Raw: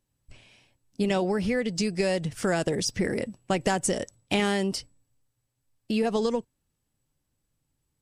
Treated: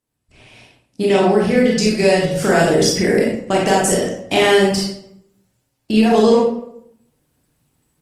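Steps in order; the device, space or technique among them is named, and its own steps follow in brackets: far-field microphone of a smart speaker (reverb RT60 0.75 s, pre-delay 25 ms, DRR -4 dB; HPF 140 Hz 6 dB/oct; AGC gain up to 13.5 dB; gain -1 dB; Opus 24 kbps 48000 Hz)

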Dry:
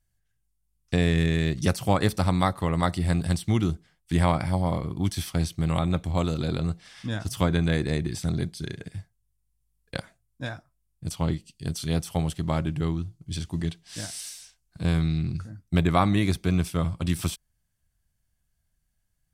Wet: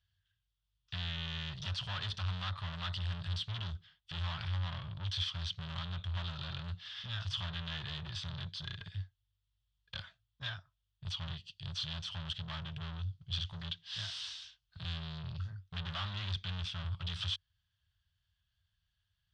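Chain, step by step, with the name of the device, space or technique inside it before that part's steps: scooped metal amplifier (tube stage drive 36 dB, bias 0.55; speaker cabinet 76–3900 Hz, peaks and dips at 93 Hz +8 dB, 260 Hz -5 dB, 490 Hz -9 dB, 770 Hz -6 dB, 2200 Hz -10 dB, 3300 Hz +7 dB; passive tone stack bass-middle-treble 10-0-10); gain +9.5 dB

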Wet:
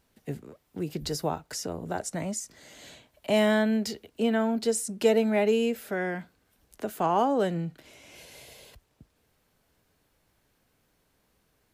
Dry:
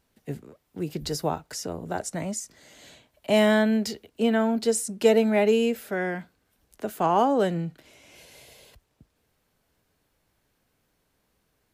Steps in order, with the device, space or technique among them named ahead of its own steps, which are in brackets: parallel compression (in parallel at -1 dB: compressor, threshold -36 dBFS, peak gain reduction 20.5 dB); on the sum: gain -4 dB

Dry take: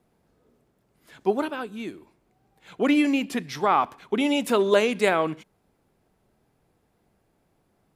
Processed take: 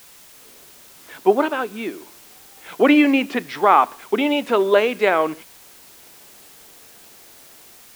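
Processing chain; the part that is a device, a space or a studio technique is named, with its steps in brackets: dictaphone (BPF 310–3000 Hz; AGC gain up to 15.5 dB; wow and flutter 22 cents; white noise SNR 25 dB); gain -1 dB

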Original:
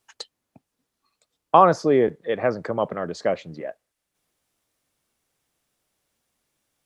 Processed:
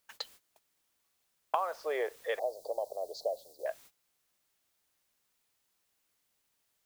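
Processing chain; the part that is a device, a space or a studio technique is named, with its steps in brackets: inverse Chebyshev high-pass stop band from 200 Hz, stop band 50 dB; baby monitor (BPF 360–4100 Hz; compressor 8:1, threshold -29 dBFS, peak gain reduction 19 dB; white noise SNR 19 dB; gate -53 dBFS, range -19 dB); 2.39–3.66 elliptic band-stop 740–4300 Hz, stop band 50 dB

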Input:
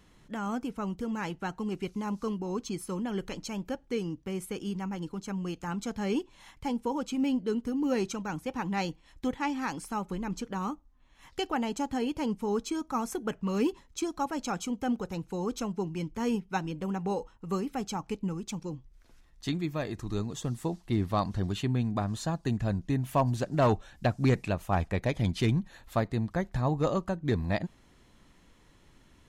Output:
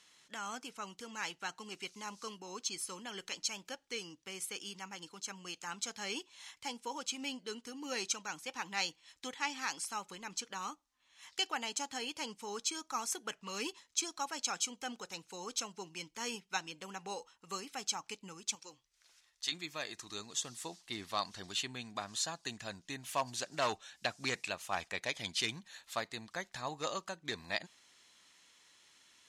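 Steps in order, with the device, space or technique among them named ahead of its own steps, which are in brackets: piezo pickup straight into a mixer (LPF 6300 Hz 12 dB/oct; differentiator); 18.55–19.52 bell 190 Hz -12 dB 1.5 oct; gain +11 dB

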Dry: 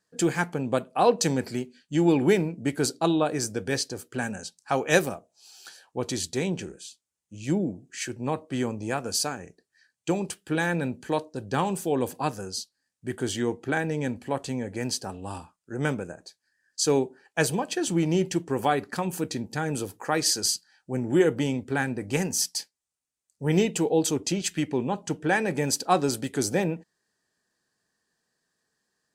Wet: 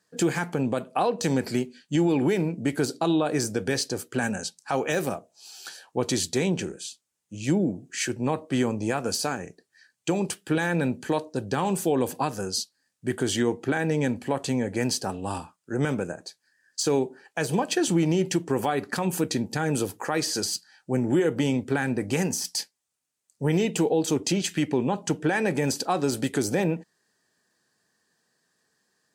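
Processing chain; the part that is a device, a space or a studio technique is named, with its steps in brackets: podcast mastering chain (HPF 94 Hz; de-esser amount 55%; compressor 2.5:1, threshold -25 dBFS, peak gain reduction 7.5 dB; limiter -19.5 dBFS, peak gain reduction 8 dB; gain +6 dB; MP3 96 kbps 44100 Hz)

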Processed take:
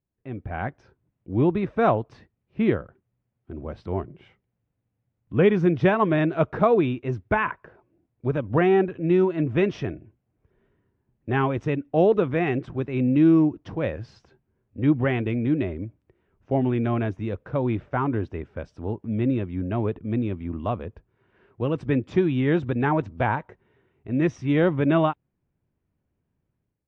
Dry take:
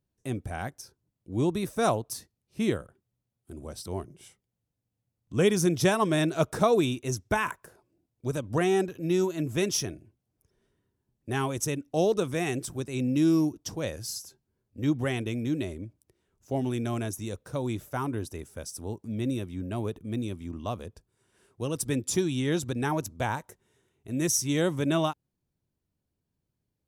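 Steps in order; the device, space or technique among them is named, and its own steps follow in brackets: action camera in a waterproof case (LPF 2500 Hz 24 dB/oct; AGC gain up to 11 dB; gain -4.5 dB; AAC 64 kbps 44100 Hz)

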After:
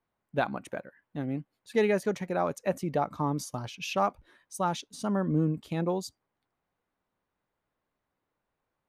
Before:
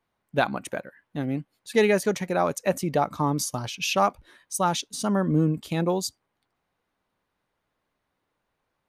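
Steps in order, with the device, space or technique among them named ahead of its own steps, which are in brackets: behind a face mask (high shelf 3000 Hz -8 dB); gain -4.5 dB

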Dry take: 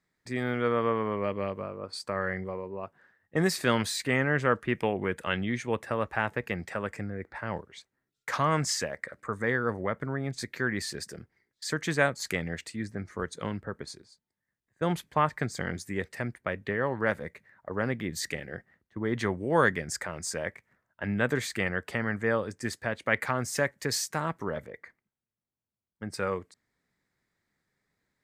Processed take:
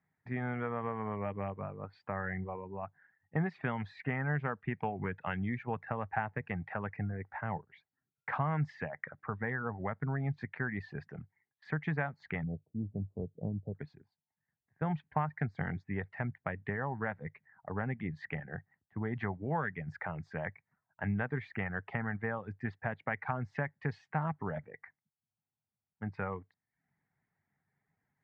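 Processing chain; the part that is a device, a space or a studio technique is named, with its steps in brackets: reverb removal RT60 0.5 s; 12.43–13.75 steep low-pass 640 Hz 48 dB/oct; bass amplifier (compressor 5:1, threshold -28 dBFS, peak gain reduction 9.5 dB; speaker cabinet 68–2200 Hz, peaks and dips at 98 Hz +6 dB, 150 Hz +8 dB, 340 Hz -7 dB, 530 Hz -7 dB, 790 Hz +8 dB, 1200 Hz -3 dB); gain -2 dB

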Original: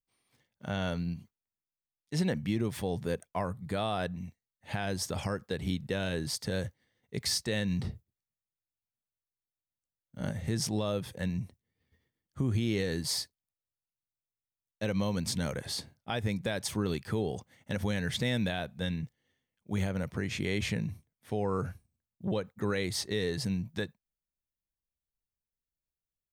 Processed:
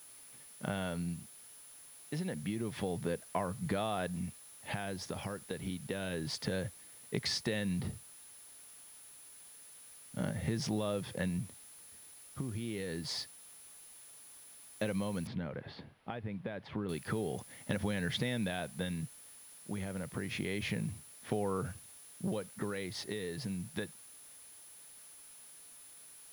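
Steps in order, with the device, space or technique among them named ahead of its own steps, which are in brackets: medium wave at night (BPF 110–4000 Hz; compressor 5:1, threshold -39 dBFS, peak gain reduction 12.5 dB; tremolo 0.28 Hz, depth 47%; whine 10000 Hz -61 dBFS; white noise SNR 20 dB); 15.27–16.89 air absorption 390 m; gain +7.5 dB

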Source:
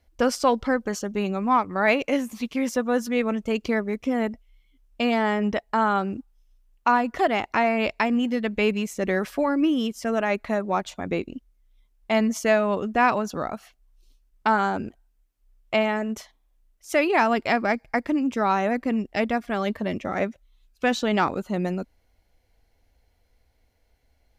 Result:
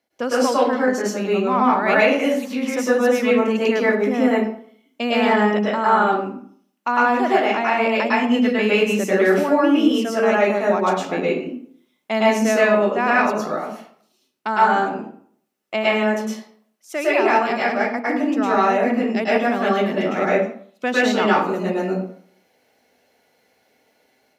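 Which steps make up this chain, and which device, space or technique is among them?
far laptop microphone (reverb RT60 0.55 s, pre-delay 0.101 s, DRR -7 dB; HPF 180 Hz 24 dB/oct; AGC gain up to 8 dB); gain -3.5 dB

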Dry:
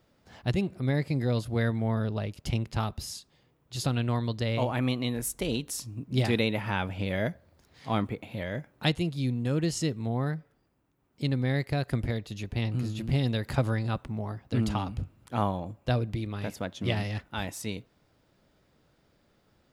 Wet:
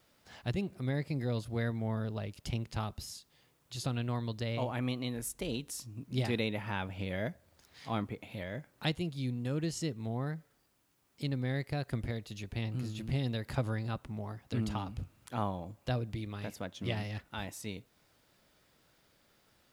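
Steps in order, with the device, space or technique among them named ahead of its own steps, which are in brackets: noise-reduction cassette on a plain deck (mismatched tape noise reduction encoder only; wow and flutter 28 cents; white noise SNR 40 dB); gain -6.5 dB

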